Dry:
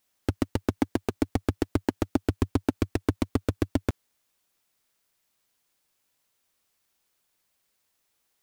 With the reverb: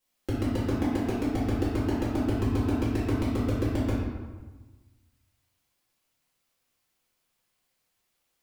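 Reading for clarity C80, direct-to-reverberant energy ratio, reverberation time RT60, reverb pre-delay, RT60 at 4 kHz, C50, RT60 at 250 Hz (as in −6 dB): 2.0 dB, −10.0 dB, 1.3 s, 3 ms, 0.85 s, −1.0 dB, 1.4 s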